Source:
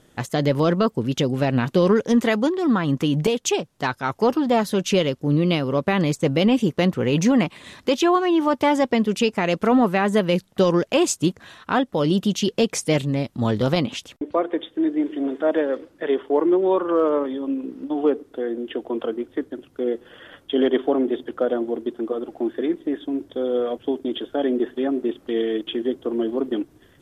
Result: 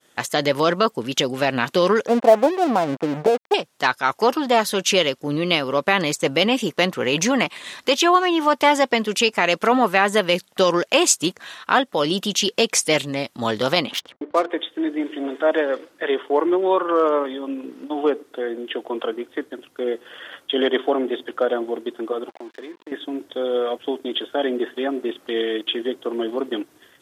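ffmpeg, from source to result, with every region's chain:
-filter_complex "[0:a]asettb=1/sr,asplit=3[a][b][c];[a]atrim=end=2.074[d];[b]atrim=start=2.07:end=3.54,asetpts=PTS-STARTPTS,afade=t=in:d=0.004:c=qsin,afade=t=out:st=1.466:d=0.004:c=qsin,lowpass=f=710:t=q:w=3.8,aeval=exprs='sgn(val(0))*max(abs(val(0))-0.02,0)':c=same[e];[c]atrim=start=3.536[f];[d][e]acrossfade=d=0.004:c1=hsin:c2=qsin[g];[g][f]acrossfade=d=0.004:c1=qsin:c2=hsin,asettb=1/sr,asplit=3[h][i][j];[h]atrim=end=13.914[k];[i]atrim=start=13.91:end=14.5,asetpts=PTS-STARTPTS,afade=t=in:d=0.004:c=qsin,afade=t=out:st=0.586:d=0.004:c=qsin,bandreject=f=2.6k:w=7.1,adynamicsmooth=sensitivity=7:basefreq=1.2k[l];[j]atrim=start=14.496[m];[k][l]acrossfade=d=0.004:c1=hsin:c2=qsin[n];[n][m]acrossfade=d=0.004:c1=qsin:c2=hsin,asettb=1/sr,asplit=3[o][p][q];[o]atrim=end=22.294[r];[p]atrim=start=22.29:end=22.92,asetpts=PTS-STARTPTS,afade=t=in:d=0.004:c=qsin,afade=t=out:st=0.626:d=0.004:c=qsin,highpass=180,lowpass=4.9k,aeval=exprs='sgn(val(0))*max(abs(val(0))-0.0075,0)':c=same,acompressor=threshold=-37dB:ratio=2.5:attack=3.2:release=140:knee=1:detection=peak[s];[q]atrim=start=22.916[t];[r][s]acrossfade=d=0.004:c1=hsin:c2=qsin[u];[u][t]acrossfade=d=0.004:c1=qsin:c2=hsin,highpass=f=1k:p=1,agate=range=-33dB:threshold=-57dB:ratio=3:detection=peak,volume=8dB"

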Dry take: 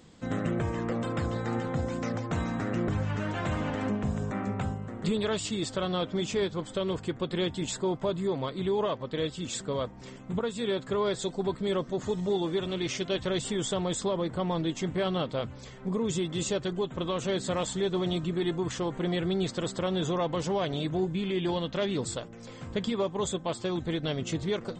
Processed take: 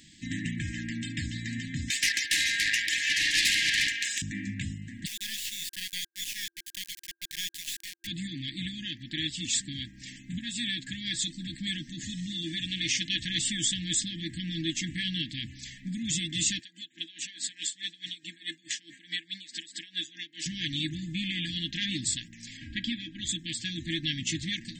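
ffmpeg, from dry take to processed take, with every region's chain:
-filter_complex "[0:a]asettb=1/sr,asplit=3[a][b][c];[a]atrim=end=1.904[d];[b]atrim=start=1.9:end=4.22,asetpts=PTS-STARTPTS,afade=t=in:d=0.004:c=qsin,afade=t=out:st=2.316:d=0.004:c=qsin,highpass=f=760:w=0.5412,highpass=f=760:w=1.3066,aeval=exprs='0.0596*sin(PI/2*3.98*val(0)/0.0596)':c=same[e];[c]atrim=start=4.216[f];[d][e]acrossfade=d=0.004:c1=hsin:c2=qsin[g];[g][f]acrossfade=d=0.004:c1=qsin:c2=hsin,asettb=1/sr,asplit=3[h][i][j];[h]atrim=end=5.064[k];[i]atrim=start=5.06:end=8.07,asetpts=PTS-STARTPTS,afade=t=in:d=0.004:c=qsin,afade=t=out:st=3.006:d=0.004:c=qsin,acrossover=split=4500[l][m];[m]acompressor=threshold=-45dB:ratio=4:attack=1:release=60[n];[l][n]amix=inputs=2:normalize=0,highpass=f=1.1k:w=0.5412,highpass=f=1.1k:w=1.3066,acrusher=bits=4:dc=4:mix=0:aa=0.000001[o];[j]atrim=start=8.066[p];[k][o]acrossfade=d=0.004:c1=hsin:c2=qsin[q];[q][p]acrossfade=d=0.004:c1=qsin:c2=hsin,asettb=1/sr,asplit=3[r][s][t];[r]atrim=end=16.594[u];[s]atrim=start=16.59:end=20.46,asetpts=PTS-STARTPTS,afade=t=in:d=0.004:c=qsin,afade=t=out:st=3.866:d=0.004:c=qsin,highpass=450,bandreject=f=6.3k:w=19,aeval=exprs='val(0)*pow(10,-19*(0.5-0.5*cos(2*PI*4.7*n/s))/20)':c=same[v];[t]atrim=start=20.456[w];[u][v]acrossfade=d=0.004:c1=hsin:c2=qsin[x];[x][w]acrossfade=d=0.004:c1=qsin:c2=hsin,asettb=1/sr,asplit=3[y][z][aa];[y]atrim=end=22.574[ab];[z]atrim=start=22.57:end=23.29,asetpts=PTS-STARTPTS,afade=t=in:d=0.004:c=qsin,afade=t=out:st=0.716:d=0.004:c=qsin,lowpass=3.4k,aecho=1:1:3.1:0.56,atrim=end_sample=31752[ac];[aa]atrim=start=23.286[ad];[ab][ac]acrossfade=d=0.004:c1=hsin:c2=qsin[ae];[ae][ad]acrossfade=d=0.004:c1=qsin:c2=hsin,tiltshelf=f=970:g=-6,afftfilt=real='re*(1-between(b*sr/4096,340,1600))':imag='im*(1-between(b*sr/4096,340,1600))':win_size=4096:overlap=0.75,volume=2.5dB"

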